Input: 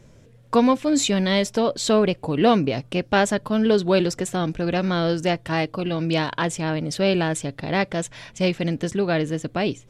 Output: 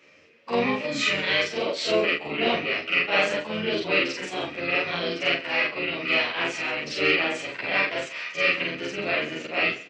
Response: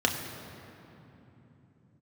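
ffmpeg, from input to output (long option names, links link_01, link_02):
-filter_complex "[0:a]afftfilt=real='re':imag='-im':win_size=4096:overlap=0.75,highshelf=frequency=1800:width_type=q:width=1.5:gain=8,asplit=2[link_01][link_02];[link_02]acompressor=threshold=-31dB:ratio=16,volume=-3dB[link_03];[link_01][link_03]amix=inputs=2:normalize=0,asoftclip=type=tanh:threshold=-7.5dB,highpass=400,equalizer=frequency=620:width_type=q:width=4:gain=4,equalizer=frequency=2500:width_type=q:width=4:gain=9,equalizer=frequency=3600:width_type=q:width=4:gain=-8,lowpass=frequency=4900:width=0.5412,lowpass=frequency=4900:width=1.3066,asplit=2[link_04][link_05];[link_05]aecho=0:1:136|272:0.126|0.034[link_06];[link_04][link_06]amix=inputs=2:normalize=0,asplit=3[link_07][link_08][link_09];[link_08]asetrate=22050,aresample=44100,atempo=2,volume=-12dB[link_10];[link_09]asetrate=35002,aresample=44100,atempo=1.25992,volume=-5dB[link_11];[link_07][link_10][link_11]amix=inputs=3:normalize=0,asplit=2[link_12][link_13];[link_13]adelay=11.4,afreqshift=0.88[link_14];[link_12][link_14]amix=inputs=2:normalize=1"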